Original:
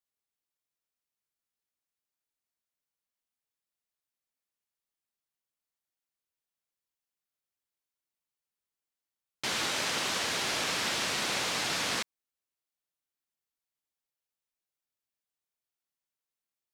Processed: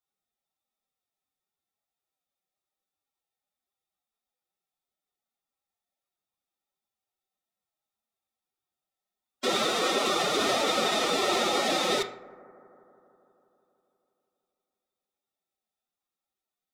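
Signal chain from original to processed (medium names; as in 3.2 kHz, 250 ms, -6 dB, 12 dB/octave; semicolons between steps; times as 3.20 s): small resonant body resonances 420/710/1000/3600 Hz, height 14 dB, ringing for 40 ms; dynamic bell 390 Hz, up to +6 dB, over -47 dBFS, Q 2.1; formant-preserving pitch shift +10.5 st; bucket-brigade echo 162 ms, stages 2048, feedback 73%, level -21.5 dB; on a send at -5 dB: reverberation RT60 0.45 s, pre-delay 3 ms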